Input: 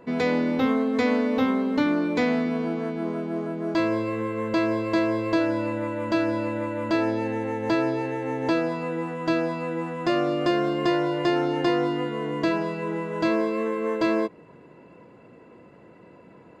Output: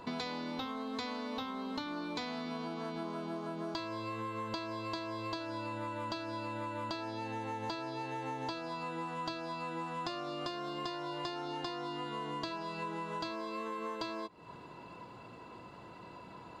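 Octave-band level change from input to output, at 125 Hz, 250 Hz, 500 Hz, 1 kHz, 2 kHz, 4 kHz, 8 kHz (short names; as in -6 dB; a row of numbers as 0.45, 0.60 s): -12.5 dB, -17.0 dB, -16.5 dB, -8.0 dB, -13.5 dB, -5.5 dB, n/a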